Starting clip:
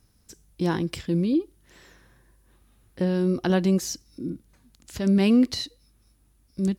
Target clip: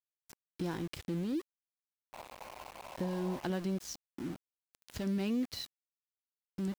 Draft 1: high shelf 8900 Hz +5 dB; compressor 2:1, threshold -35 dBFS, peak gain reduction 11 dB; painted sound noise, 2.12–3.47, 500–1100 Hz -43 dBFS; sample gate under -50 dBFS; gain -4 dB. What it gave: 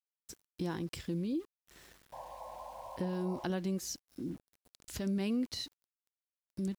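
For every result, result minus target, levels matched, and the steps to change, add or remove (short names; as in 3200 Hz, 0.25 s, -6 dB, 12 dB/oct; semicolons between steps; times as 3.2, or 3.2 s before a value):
sample gate: distortion -10 dB; 8000 Hz band +3.5 dB
change: sample gate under -39.5 dBFS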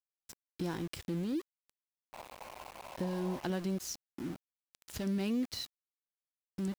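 8000 Hz band +3.0 dB
change: high shelf 8900 Hz -5 dB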